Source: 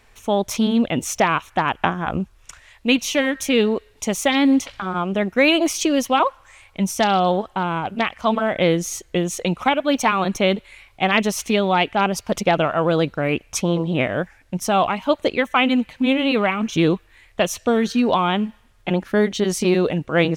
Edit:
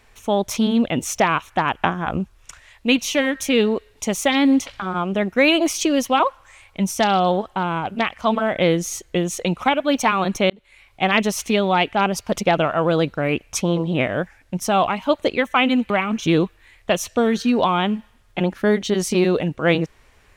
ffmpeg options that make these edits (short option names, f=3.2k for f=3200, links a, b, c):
-filter_complex "[0:a]asplit=3[a][b][c];[a]atrim=end=10.5,asetpts=PTS-STARTPTS,afade=t=out:st=10.496:d=0.004:c=hsin[d];[b]atrim=start=10.5:end=15.902,asetpts=PTS-STARTPTS,afade=t=in:d=0.53[e];[c]atrim=start=16.398[f];[d][e]concat=n=2:v=0:a=1[g];[g][f]acrossfade=d=0.004:c1=hsin:c2=hsin"